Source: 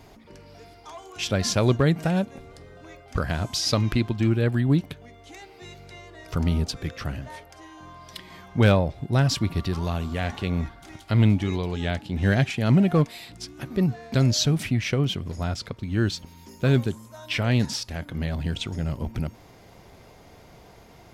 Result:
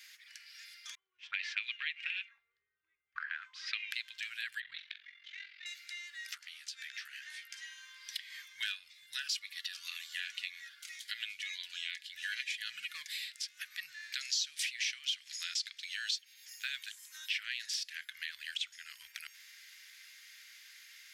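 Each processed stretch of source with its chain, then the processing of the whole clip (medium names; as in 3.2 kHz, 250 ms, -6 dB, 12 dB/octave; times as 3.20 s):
0.95–3.91 s: peaking EQ 1.6 kHz -6.5 dB 0.59 oct + touch-sensitive low-pass 280–2600 Hz up, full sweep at -20 dBFS
4.60–5.66 s: low-pass 4 kHz 24 dB/octave + ring modulator 22 Hz + flutter echo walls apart 7.5 m, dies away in 0.27 s
6.35–7.69 s: frequency weighting A + compression 12:1, threshold -41 dBFS + doubling 15 ms -6 dB
8.42–13.12 s: comb 4.1 ms, depth 38% + Shepard-style phaser falling 2 Hz
14.21–16.16 s: peaking EQ 5.8 kHz +12 dB 2.3 oct + compression 2.5:1, threshold -22 dBFS
whole clip: elliptic high-pass 1.7 kHz, stop band 60 dB; dynamic bell 3 kHz, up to +4 dB, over -45 dBFS, Q 1; compression 2.5:1, threshold -45 dBFS; trim +4.5 dB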